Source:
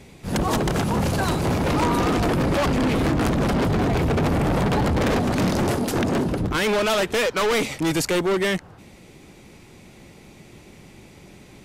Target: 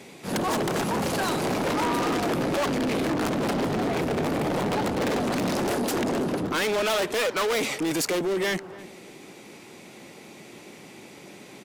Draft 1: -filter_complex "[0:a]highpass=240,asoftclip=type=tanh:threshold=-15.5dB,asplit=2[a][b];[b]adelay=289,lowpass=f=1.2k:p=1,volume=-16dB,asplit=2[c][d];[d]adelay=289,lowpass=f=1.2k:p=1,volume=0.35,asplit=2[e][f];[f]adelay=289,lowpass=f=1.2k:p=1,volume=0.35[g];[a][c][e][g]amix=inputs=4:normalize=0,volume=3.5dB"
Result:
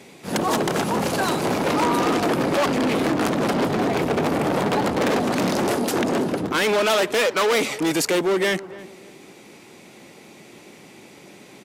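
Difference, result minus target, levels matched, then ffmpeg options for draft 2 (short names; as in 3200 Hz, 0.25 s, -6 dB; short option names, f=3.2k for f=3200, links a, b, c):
soft clip: distortion -11 dB
-filter_complex "[0:a]highpass=240,asoftclip=type=tanh:threshold=-25.5dB,asplit=2[a][b];[b]adelay=289,lowpass=f=1.2k:p=1,volume=-16dB,asplit=2[c][d];[d]adelay=289,lowpass=f=1.2k:p=1,volume=0.35,asplit=2[e][f];[f]adelay=289,lowpass=f=1.2k:p=1,volume=0.35[g];[a][c][e][g]amix=inputs=4:normalize=0,volume=3.5dB"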